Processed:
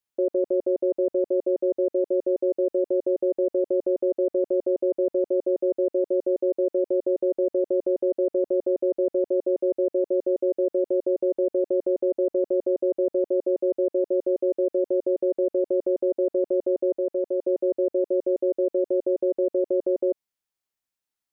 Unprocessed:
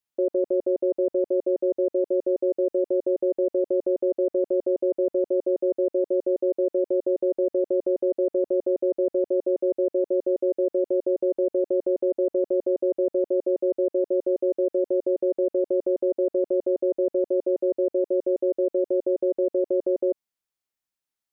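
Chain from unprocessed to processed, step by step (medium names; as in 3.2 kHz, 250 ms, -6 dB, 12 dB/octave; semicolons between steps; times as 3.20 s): 16.98–17.47 s: bass shelf 340 Hz -6.5 dB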